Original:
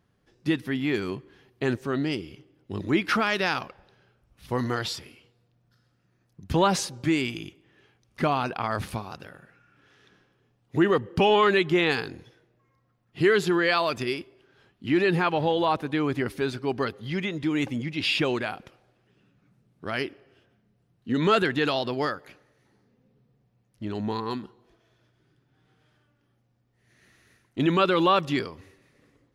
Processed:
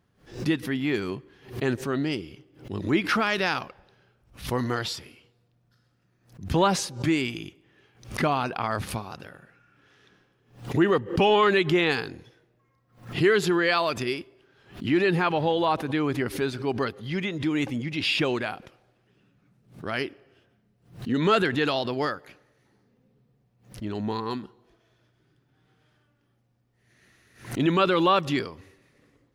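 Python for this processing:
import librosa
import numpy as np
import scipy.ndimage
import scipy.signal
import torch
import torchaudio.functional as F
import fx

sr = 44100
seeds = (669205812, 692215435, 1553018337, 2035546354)

y = fx.pre_swell(x, sr, db_per_s=140.0)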